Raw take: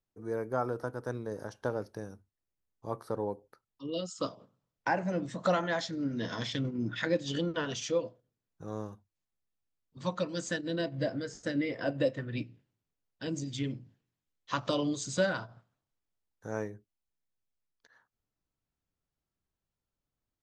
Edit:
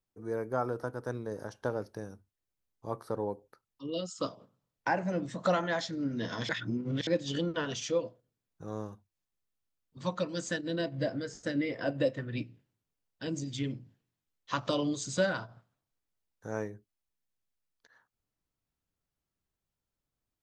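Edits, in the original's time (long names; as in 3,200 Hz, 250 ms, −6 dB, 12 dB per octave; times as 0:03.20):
0:06.49–0:07.07: reverse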